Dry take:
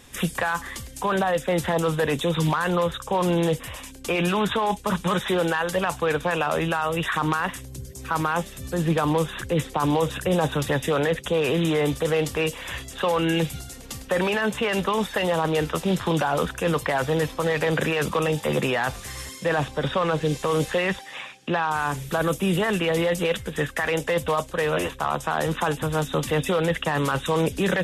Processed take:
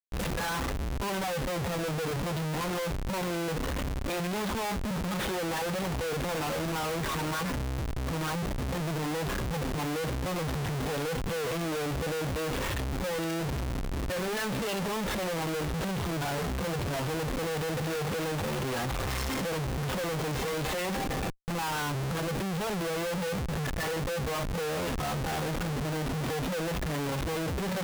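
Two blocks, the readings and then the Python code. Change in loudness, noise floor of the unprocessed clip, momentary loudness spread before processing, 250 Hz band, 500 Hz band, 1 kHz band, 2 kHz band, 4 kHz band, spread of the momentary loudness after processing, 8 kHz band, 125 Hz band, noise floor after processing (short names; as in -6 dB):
-7.5 dB, -42 dBFS, 5 LU, -7.0 dB, -9.0 dB, -8.5 dB, -8.5 dB, -5.5 dB, 2 LU, -3.0 dB, -4.5 dB, -32 dBFS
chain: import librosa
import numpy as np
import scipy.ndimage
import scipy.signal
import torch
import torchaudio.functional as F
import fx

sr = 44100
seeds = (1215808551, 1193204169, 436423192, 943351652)

y = fx.hpss_only(x, sr, part='harmonic')
y = fx.schmitt(y, sr, flips_db=-40.0)
y = y * librosa.db_to_amplitude(-5.0)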